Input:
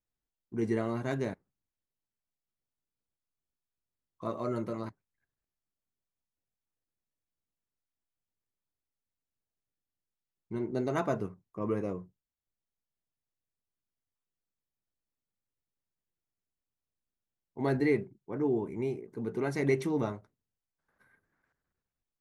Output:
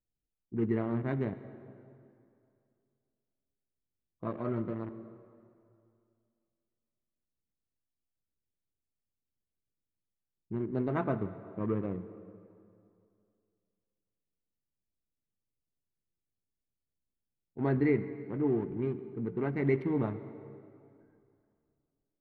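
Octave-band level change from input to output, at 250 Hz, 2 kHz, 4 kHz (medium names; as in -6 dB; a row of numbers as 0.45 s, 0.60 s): +1.0 dB, -3.0 dB, under -10 dB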